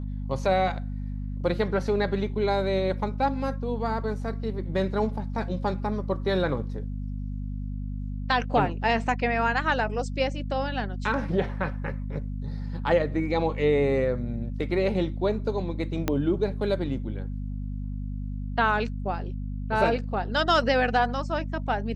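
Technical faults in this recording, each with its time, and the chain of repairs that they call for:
hum 50 Hz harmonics 5 -32 dBFS
16.08 s: pop -10 dBFS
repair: de-click; de-hum 50 Hz, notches 5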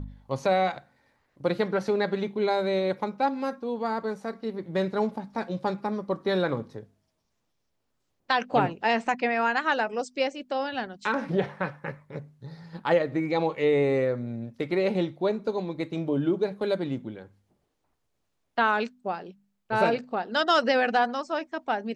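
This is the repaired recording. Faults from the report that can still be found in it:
16.08 s: pop

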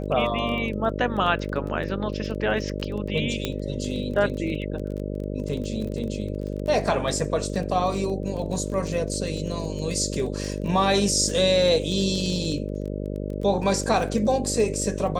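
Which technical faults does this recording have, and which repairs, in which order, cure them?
buzz 50 Hz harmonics 12 -30 dBFS
crackle 22 per s -31 dBFS
3.45 s: pop -11 dBFS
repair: de-click; de-hum 50 Hz, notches 12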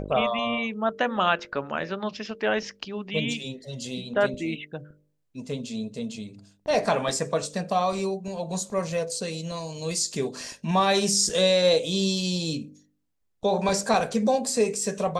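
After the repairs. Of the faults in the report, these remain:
nothing left

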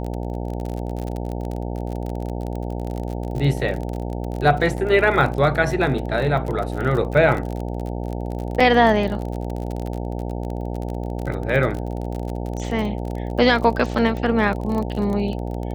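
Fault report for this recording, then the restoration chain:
buzz 60 Hz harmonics 15 -27 dBFS
crackle 33 per s -26 dBFS
8.60 s: dropout 4.8 ms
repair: de-click; de-hum 60 Hz, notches 15; interpolate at 8.60 s, 4.8 ms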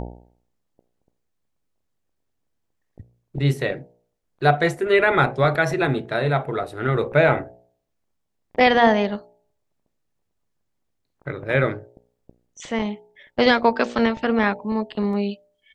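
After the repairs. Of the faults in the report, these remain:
nothing left

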